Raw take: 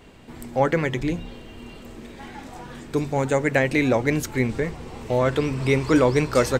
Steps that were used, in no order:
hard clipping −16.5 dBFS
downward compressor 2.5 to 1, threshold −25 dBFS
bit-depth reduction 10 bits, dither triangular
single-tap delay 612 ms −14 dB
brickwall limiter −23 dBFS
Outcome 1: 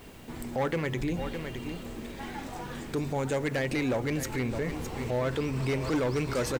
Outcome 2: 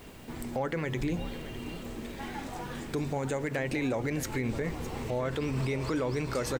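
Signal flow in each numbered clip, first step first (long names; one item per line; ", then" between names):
hard clipping, then single-tap delay, then downward compressor, then bit-depth reduction, then brickwall limiter
bit-depth reduction, then downward compressor, then hard clipping, then brickwall limiter, then single-tap delay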